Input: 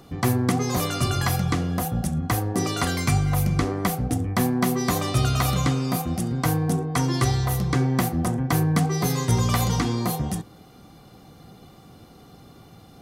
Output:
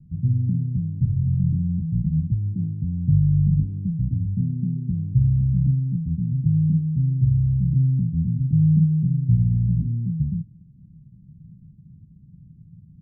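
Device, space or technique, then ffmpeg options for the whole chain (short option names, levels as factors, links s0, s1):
the neighbour's flat through the wall: -af "lowpass=f=160:w=0.5412,lowpass=f=160:w=1.3066,equalizer=f=170:t=o:w=0.93:g=8,volume=1.12"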